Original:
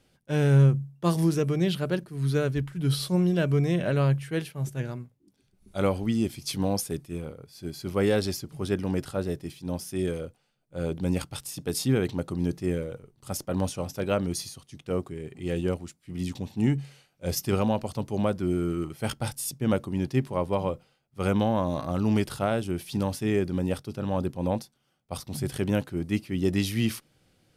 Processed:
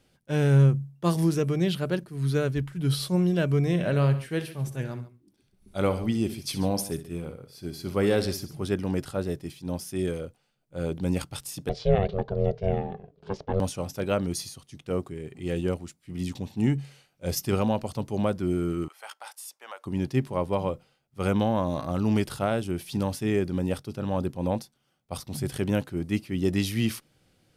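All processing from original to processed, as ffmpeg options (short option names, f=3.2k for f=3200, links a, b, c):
-filter_complex "[0:a]asettb=1/sr,asplit=3[a][b][c];[a]atrim=end=3.604[d];[b]atrim=start=3.6:end=8.64,asetpts=PTS-STARTPTS,afade=t=in:d=0.004:c=qsin,afade=t=out:st=5.036:d=0.004:c=qsin,equalizer=f=6.9k:t=o:w=0.22:g=-4,aecho=1:1:64|140:0.237|0.141,atrim=end_sample=222264[e];[c]atrim=start=8.636[f];[d][e]acrossfade=d=0.004:c1=hsin:c2=qsin[g];[g][f]acrossfade=d=0.004:c1=qsin:c2=hsin,asettb=1/sr,asplit=3[h][i][j];[h]atrim=end=11.694[k];[i]atrim=start=11.69:end=13.6,asetpts=PTS-STARTPTS,afade=t=in:d=0.004:c=qsin,afade=t=out:st=1.906:d=0.004:c=qsin,lowpass=f=4.2k:w=0.5412,lowpass=f=4.2k:w=1.3066,equalizer=f=150:w=0.47:g=6.5,aeval=exprs='val(0)*sin(2*PI*290*n/s)':c=same[l];[j]atrim=start=13.596[m];[k][l]acrossfade=d=0.004:c1=hsin:c2=qsin[n];[n][m]acrossfade=d=0.004:c1=qsin:c2=hsin,asettb=1/sr,asplit=3[o][p][q];[o]atrim=end=18.884[r];[p]atrim=start=18.88:end=19.86,asetpts=PTS-STARTPTS,afade=t=in:d=0.004:c=qsin,afade=t=out:st=0.976:d=0.004:c=qsin,highpass=f=850:w=0.5412,highpass=f=850:w=1.3066,tiltshelf=f=1.4k:g=6,acompressor=threshold=-40dB:ratio=2:attack=3.2:release=140:knee=1:detection=peak[s];[q]atrim=start=19.856[t];[r][s]acrossfade=d=0.004:c1=hsin:c2=qsin[u];[u][t]acrossfade=d=0.004:c1=qsin:c2=hsin"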